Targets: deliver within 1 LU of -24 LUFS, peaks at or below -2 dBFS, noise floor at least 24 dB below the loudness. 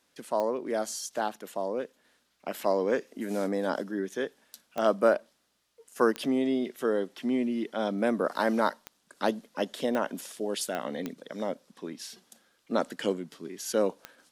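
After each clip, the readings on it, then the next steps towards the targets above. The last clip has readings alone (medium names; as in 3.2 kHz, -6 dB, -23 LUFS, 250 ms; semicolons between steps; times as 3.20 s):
clicks found 8; loudness -30.5 LUFS; peak level -10.0 dBFS; loudness target -24.0 LUFS
-> de-click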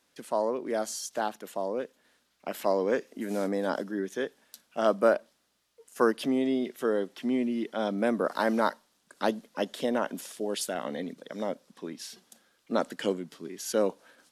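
clicks found 0; loudness -30.5 LUFS; peak level -10.0 dBFS; loudness target -24.0 LUFS
-> trim +6.5 dB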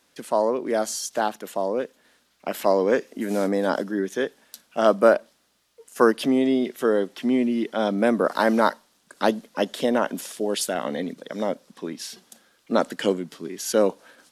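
loudness -24.0 LUFS; peak level -3.5 dBFS; noise floor -65 dBFS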